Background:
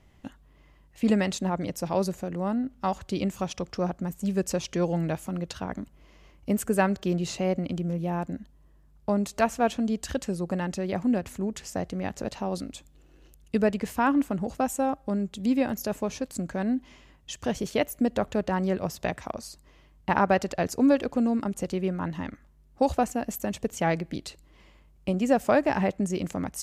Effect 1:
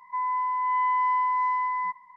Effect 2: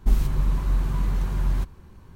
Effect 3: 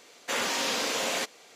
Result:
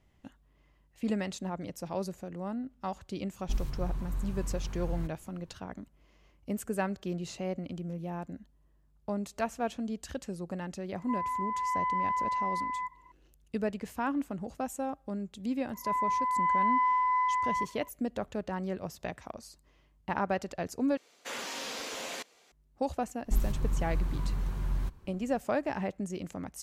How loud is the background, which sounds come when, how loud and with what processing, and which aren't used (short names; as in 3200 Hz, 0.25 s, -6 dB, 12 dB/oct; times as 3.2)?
background -8.5 dB
3.43 add 2 -12 dB
10.96 add 1 -6.5 dB
15.73 add 1 -2.5 dB
20.97 replace with 3 -9.5 dB + crackling interface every 0.14 s repeat, from 0.67
23.25 add 2 -8 dB